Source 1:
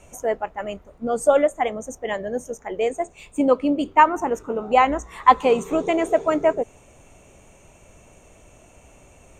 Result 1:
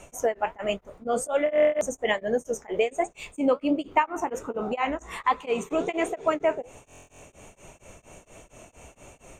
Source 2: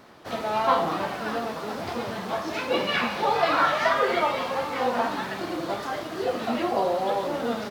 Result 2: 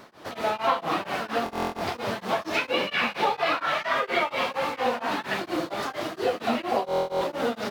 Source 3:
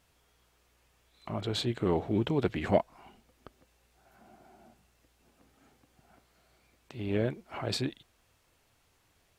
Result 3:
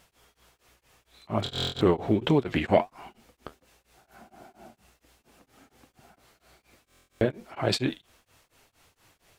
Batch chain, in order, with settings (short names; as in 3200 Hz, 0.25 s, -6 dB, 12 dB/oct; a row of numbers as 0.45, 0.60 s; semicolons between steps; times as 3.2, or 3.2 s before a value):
low shelf 190 Hz -4.5 dB; flange 1.3 Hz, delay 5.1 ms, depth 8.9 ms, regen -63%; dynamic EQ 2500 Hz, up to +6 dB, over -46 dBFS, Q 1.7; compressor 4:1, threshold -29 dBFS; stuck buffer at 1.44/6.84, samples 1024, times 15; beating tremolo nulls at 4.3 Hz; match loudness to -27 LUFS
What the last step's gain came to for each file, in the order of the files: +9.5, +9.0, +14.5 dB